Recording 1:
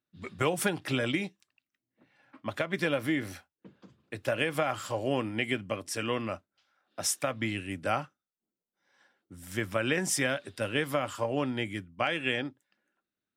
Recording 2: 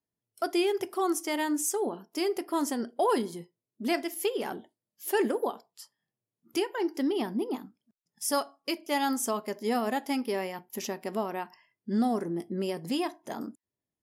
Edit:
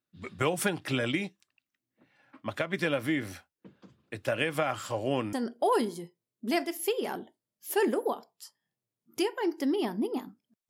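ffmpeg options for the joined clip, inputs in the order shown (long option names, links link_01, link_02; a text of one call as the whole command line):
ffmpeg -i cue0.wav -i cue1.wav -filter_complex "[0:a]apad=whole_dur=10.69,atrim=end=10.69,atrim=end=5.332[link_01];[1:a]atrim=start=2.698:end=8.06[link_02];[link_01][link_02]acrossfade=duration=0.004:curve1=hsin:curve2=hsin" out.wav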